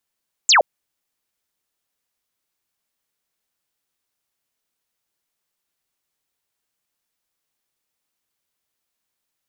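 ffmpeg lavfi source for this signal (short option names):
-f lavfi -i "aevalsrc='0.335*clip(t/0.002,0,1)*clip((0.12-t)/0.002,0,1)*sin(2*PI*7900*0.12/log(510/7900)*(exp(log(510/7900)*t/0.12)-1))':d=0.12:s=44100"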